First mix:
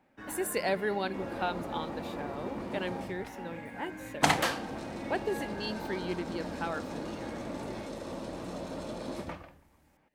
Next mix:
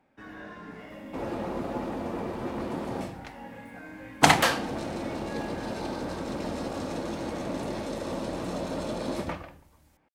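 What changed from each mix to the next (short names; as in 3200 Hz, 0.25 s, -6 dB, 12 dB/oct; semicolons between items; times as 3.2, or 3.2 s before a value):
speech: muted; second sound +6.5 dB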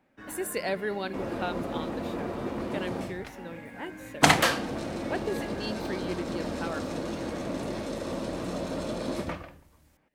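speech: unmuted; master: add bell 850 Hz -4.5 dB 0.33 oct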